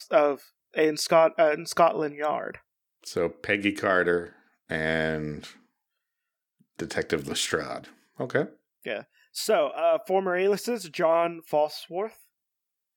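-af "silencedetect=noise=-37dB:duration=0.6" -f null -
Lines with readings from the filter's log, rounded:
silence_start: 5.49
silence_end: 6.79 | silence_duration: 1.31
silence_start: 12.08
silence_end: 12.96 | silence_duration: 0.88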